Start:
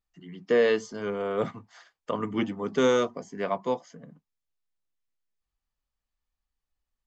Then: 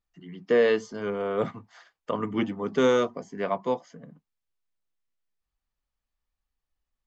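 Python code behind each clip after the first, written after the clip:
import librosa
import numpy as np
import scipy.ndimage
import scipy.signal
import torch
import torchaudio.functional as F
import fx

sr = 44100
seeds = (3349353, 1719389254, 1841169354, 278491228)

y = fx.high_shelf(x, sr, hz=6600.0, db=-8.5)
y = F.gain(torch.from_numpy(y), 1.0).numpy()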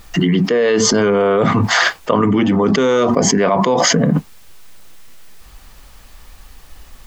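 y = fx.env_flatten(x, sr, amount_pct=100)
y = F.gain(torch.from_numpy(y), 4.0).numpy()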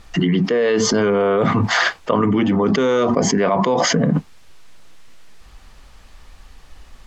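y = fx.air_absorb(x, sr, metres=51.0)
y = F.gain(torch.from_numpy(y), -2.5).numpy()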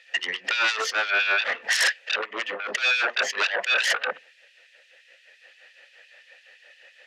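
y = fx.vowel_filter(x, sr, vowel='e')
y = fx.fold_sine(y, sr, drive_db=16, ceiling_db=-12.5)
y = fx.filter_lfo_highpass(y, sr, shape='sine', hz=5.8, low_hz=830.0, high_hz=2900.0, q=0.75)
y = F.gain(torch.from_numpy(y), -3.5).numpy()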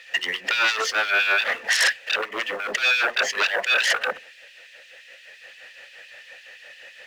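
y = fx.law_mismatch(x, sr, coded='mu')
y = F.gain(torch.from_numpy(y), 1.5).numpy()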